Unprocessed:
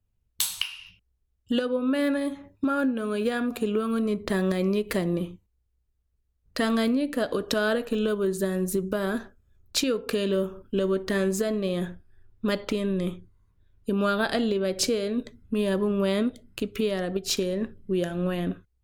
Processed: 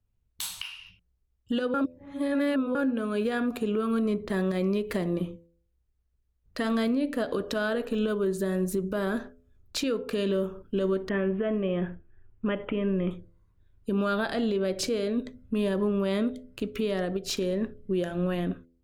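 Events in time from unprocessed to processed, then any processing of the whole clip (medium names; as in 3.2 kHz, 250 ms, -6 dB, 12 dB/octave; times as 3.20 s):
1.74–2.75 s: reverse
11.09–13.11 s: steep low-pass 3.2 kHz 96 dB/octave
whole clip: treble shelf 3.9 kHz -6 dB; de-hum 84.61 Hz, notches 8; peak limiter -19.5 dBFS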